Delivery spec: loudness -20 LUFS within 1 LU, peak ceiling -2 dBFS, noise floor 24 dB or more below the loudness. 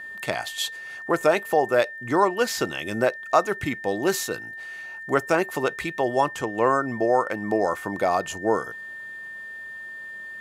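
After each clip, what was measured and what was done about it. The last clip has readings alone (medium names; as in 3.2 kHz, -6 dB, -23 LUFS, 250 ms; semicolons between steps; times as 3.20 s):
tick rate 20 per s; steady tone 1.8 kHz; tone level -35 dBFS; loudness -24.5 LUFS; peak level -5.0 dBFS; loudness target -20.0 LUFS
-> de-click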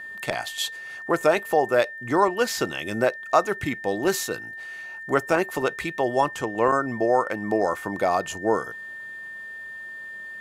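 tick rate 0 per s; steady tone 1.8 kHz; tone level -35 dBFS
-> band-stop 1.8 kHz, Q 30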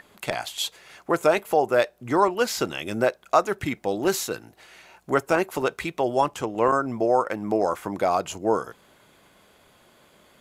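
steady tone not found; loudness -24.5 LUFS; peak level -5.5 dBFS; loudness target -20.0 LUFS
-> trim +4.5 dB; peak limiter -2 dBFS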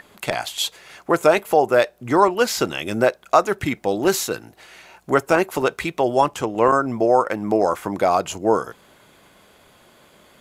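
loudness -20.0 LUFS; peak level -2.0 dBFS; noise floor -54 dBFS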